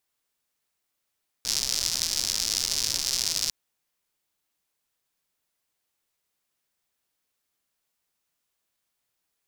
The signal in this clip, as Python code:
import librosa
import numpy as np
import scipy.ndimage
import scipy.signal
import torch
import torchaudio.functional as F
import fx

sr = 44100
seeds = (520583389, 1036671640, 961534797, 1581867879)

y = fx.rain(sr, seeds[0], length_s=2.05, drops_per_s=160.0, hz=5200.0, bed_db=-15)